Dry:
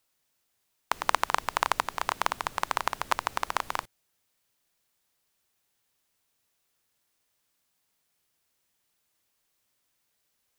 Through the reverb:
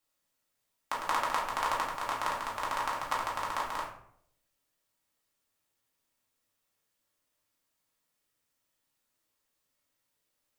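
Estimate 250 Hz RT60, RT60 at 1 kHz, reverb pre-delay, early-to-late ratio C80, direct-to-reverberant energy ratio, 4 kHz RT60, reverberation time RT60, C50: 0.80 s, 0.60 s, 4 ms, 8.5 dB, -5.5 dB, 0.40 s, 0.65 s, 4.5 dB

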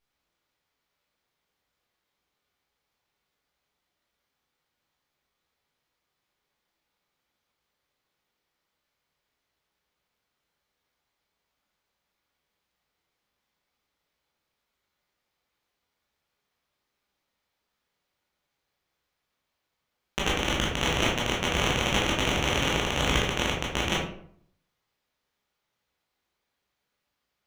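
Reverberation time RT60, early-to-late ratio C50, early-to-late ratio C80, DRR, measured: 0.60 s, 3.0 dB, 7.5 dB, -4.5 dB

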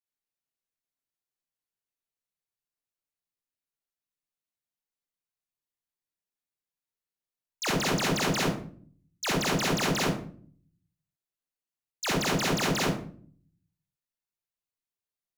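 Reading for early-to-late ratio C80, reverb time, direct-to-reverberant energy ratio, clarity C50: 7.0 dB, 0.50 s, -4.5 dB, 0.0 dB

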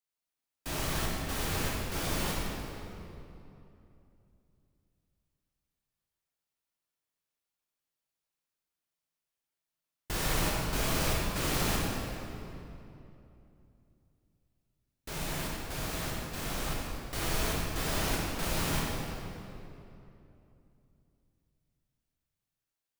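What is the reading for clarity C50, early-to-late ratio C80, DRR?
-2.0 dB, -0.5 dB, -4.5 dB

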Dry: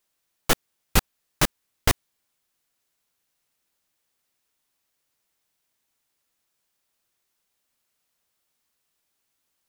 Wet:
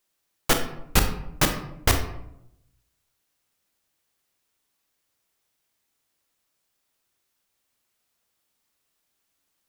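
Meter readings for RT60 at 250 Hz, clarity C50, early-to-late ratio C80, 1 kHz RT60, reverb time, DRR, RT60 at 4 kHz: 1.0 s, 8.0 dB, 11.0 dB, 0.70 s, 0.80 s, 5.0 dB, 0.45 s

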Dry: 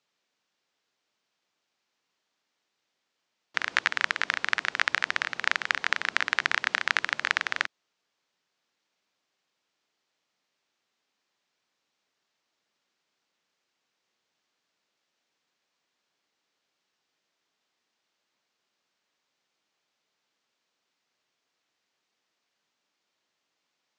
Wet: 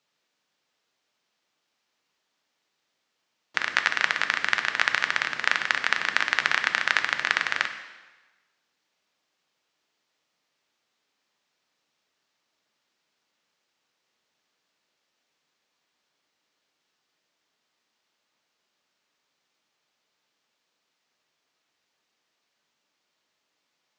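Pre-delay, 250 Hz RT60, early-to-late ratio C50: 3 ms, 1.2 s, 9.5 dB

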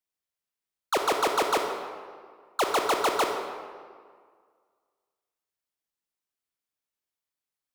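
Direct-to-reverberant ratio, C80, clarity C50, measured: 3.0 dB, 5.5 dB, 4.0 dB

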